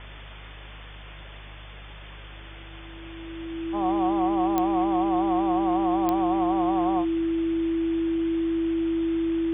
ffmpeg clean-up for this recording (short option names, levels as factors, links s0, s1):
-af "adeclick=t=4,bandreject=f=50.5:t=h:w=4,bandreject=f=101:t=h:w=4,bandreject=f=151.5:t=h:w=4,bandreject=f=330:w=30,afwtdn=0.011"